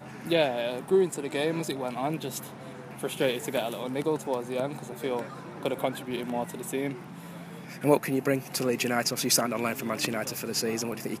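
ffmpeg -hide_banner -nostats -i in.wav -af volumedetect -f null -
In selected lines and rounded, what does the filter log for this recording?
mean_volume: -29.7 dB
max_volume: -8.1 dB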